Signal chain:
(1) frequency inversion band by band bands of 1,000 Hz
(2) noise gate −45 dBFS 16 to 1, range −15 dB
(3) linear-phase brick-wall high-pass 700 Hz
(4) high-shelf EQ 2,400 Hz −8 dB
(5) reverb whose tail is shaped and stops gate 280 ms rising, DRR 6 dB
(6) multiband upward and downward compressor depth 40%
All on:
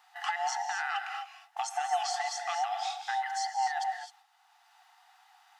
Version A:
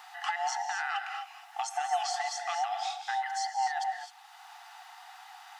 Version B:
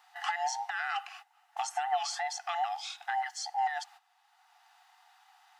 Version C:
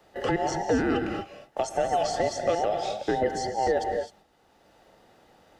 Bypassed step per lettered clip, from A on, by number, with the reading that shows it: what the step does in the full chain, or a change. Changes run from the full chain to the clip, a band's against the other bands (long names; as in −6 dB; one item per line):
2, change in momentary loudness spread +10 LU
5, change in integrated loudness −1.0 LU
3, change in momentary loudness spread −1 LU